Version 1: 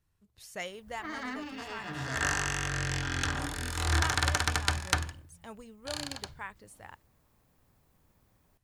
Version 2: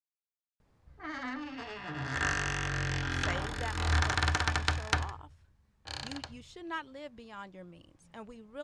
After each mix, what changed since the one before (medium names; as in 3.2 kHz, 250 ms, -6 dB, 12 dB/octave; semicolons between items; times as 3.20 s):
speech: entry +2.70 s; master: add distance through air 84 m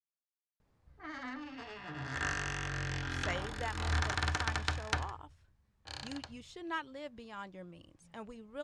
background -4.5 dB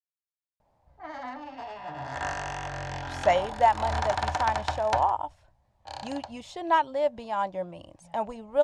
speech +8.0 dB; master: add high-order bell 740 Hz +14 dB 1 oct